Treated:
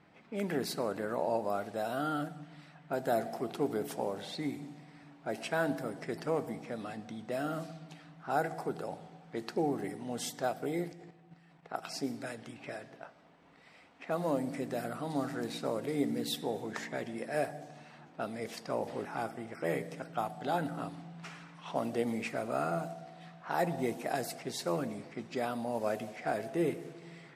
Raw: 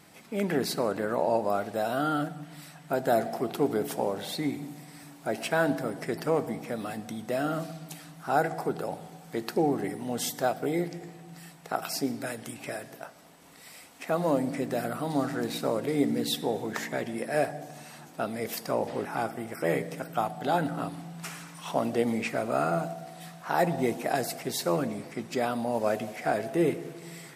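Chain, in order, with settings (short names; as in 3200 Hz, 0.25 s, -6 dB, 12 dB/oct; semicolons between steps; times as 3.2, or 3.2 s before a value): 10.92–11.87 level quantiser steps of 9 dB; low-pass opened by the level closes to 2400 Hz, open at -25.5 dBFS; gain -6 dB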